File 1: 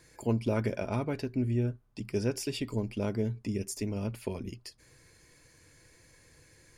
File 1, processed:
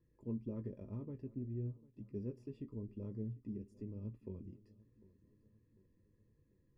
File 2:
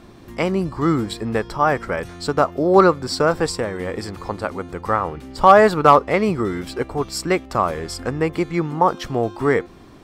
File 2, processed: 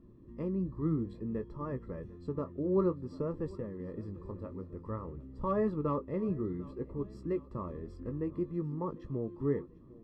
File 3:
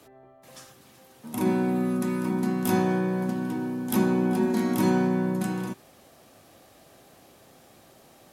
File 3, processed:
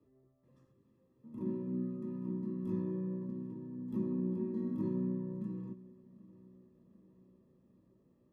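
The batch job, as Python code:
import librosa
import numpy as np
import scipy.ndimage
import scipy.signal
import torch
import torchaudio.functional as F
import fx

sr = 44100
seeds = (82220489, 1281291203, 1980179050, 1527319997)

y = scipy.signal.lfilter(np.full(59, 1.0 / 59), 1.0, x)
y = fx.chorus_voices(y, sr, voices=2, hz=0.56, base_ms=18, depth_ms=4.2, mix_pct=25)
y = fx.echo_feedback(y, sr, ms=747, feedback_pct=53, wet_db=-21.5)
y = F.gain(torch.from_numpy(y), -8.0).numpy()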